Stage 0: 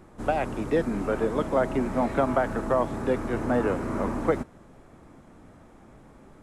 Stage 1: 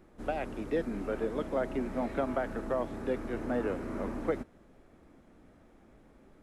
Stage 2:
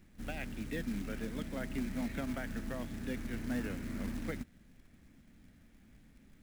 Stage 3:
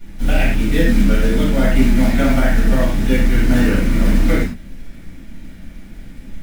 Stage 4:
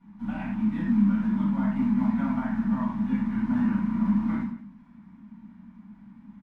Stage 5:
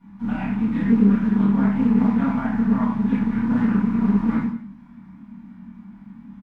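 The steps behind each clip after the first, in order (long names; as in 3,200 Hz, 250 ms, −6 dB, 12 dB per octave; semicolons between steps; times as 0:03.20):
octave-band graphic EQ 125/1,000/8,000 Hz −7/−6/−6 dB; level −5.5 dB
flat-topped bell 650 Hz −14 dB 2.3 octaves; floating-point word with a short mantissa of 2 bits; level +1 dB
convolution reverb, pre-delay 3 ms, DRR −11.5 dB; level +7 dB
pair of resonant band-passes 460 Hz, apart 2.2 octaves; single-tap delay 176 ms −16.5 dB
double-tracking delay 26 ms −3.5 dB; highs frequency-modulated by the lows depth 0.25 ms; level +4.5 dB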